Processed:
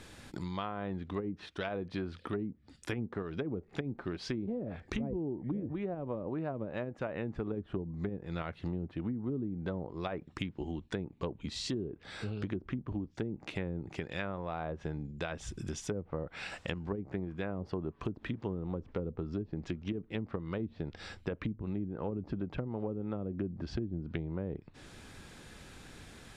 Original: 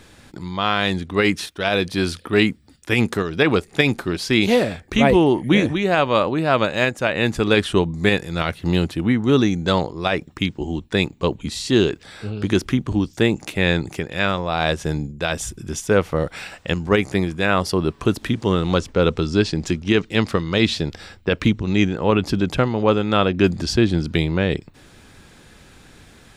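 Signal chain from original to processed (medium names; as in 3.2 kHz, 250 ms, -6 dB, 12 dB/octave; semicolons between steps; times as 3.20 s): low-pass that closes with the level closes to 360 Hz, closed at -13 dBFS; compression 4:1, threshold -31 dBFS, peak gain reduction 15.5 dB; trim -4.5 dB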